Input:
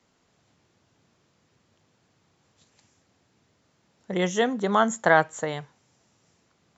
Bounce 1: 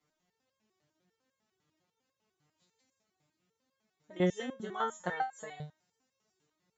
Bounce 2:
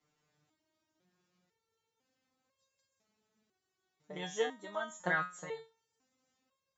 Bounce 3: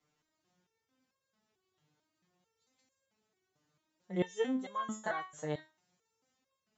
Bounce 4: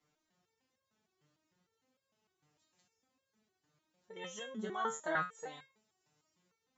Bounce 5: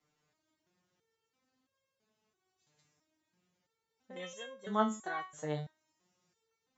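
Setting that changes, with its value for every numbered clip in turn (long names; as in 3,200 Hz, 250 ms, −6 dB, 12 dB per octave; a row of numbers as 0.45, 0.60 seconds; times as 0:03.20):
step-sequenced resonator, speed: 10, 2, 4.5, 6.6, 3 Hertz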